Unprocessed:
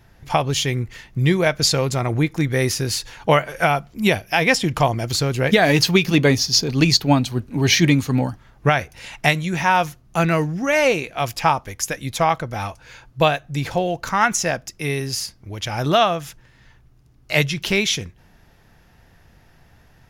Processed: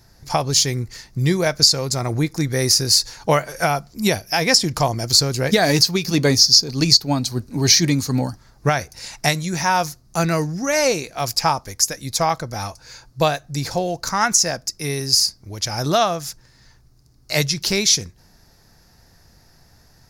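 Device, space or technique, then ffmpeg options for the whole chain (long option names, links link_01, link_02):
over-bright horn tweeter: -af "highshelf=frequency=3800:width_type=q:width=3:gain=7,alimiter=limit=0dB:level=0:latency=1:release=414,volume=-1dB"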